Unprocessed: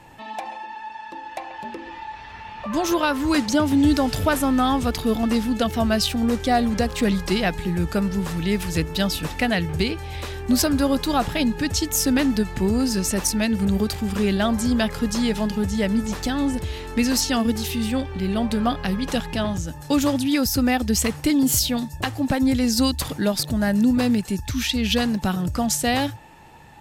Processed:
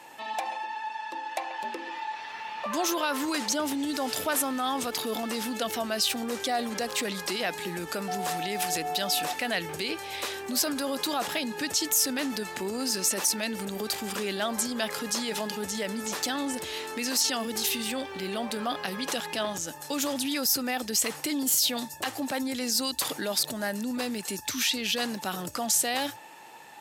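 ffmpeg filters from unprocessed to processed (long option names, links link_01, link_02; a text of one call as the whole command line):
ffmpeg -i in.wav -filter_complex "[0:a]asettb=1/sr,asplit=3[link_01][link_02][link_03];[link_01]atrim=end=8.084[link_04];[link_02]atrim=start=8.08:end=9.33,asetpts=PTS-STARTPTS,afade=type=in:duration=0.004:curve=qsin,afade=type=out:start_time=1.246:duration=0.004:curve=qsin,aeval=exprs='val(0)+0.0355*sin(2*PI*730*n/s)':channel_layout=same[link_05];[link_03]atrim=start=9.326[link_06];[link_04][link_05]acrossfade=duration=0.004:curve1=hsin:curve2=qsin[link_07];[link_07][link_06]acrossfade=duration=0.004:curve1=qsin:curve2=hsin,alimiter=limit=-18.5dB:level=0:latency=1:release=25,highpass=380,highshelf=frequency=4000:gain=6" out.wav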